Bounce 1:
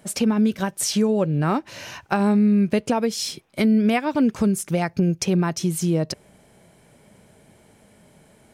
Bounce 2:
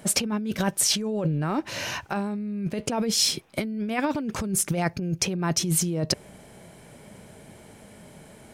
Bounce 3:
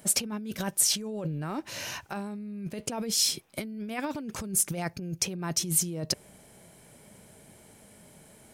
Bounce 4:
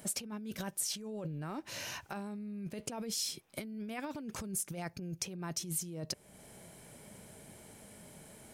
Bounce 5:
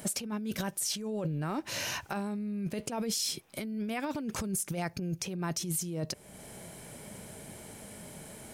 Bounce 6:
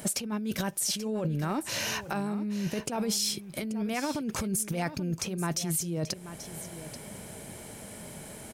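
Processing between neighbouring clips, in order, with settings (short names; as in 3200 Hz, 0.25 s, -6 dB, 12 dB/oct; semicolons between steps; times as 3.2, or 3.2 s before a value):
negative-ratio compressor -26 dBFS, ratio -1
high shelf 6200 Hz +10.5 dB; gain -7.5 dB
compressor 2:1, threshold -43 dBFS, peak gain reduction 12.5 dB
limiter -29.5 dBFS, peak gain reduction 9 dB; gain +7 dB
echo 0.834 s -13 dB; gain +3 dB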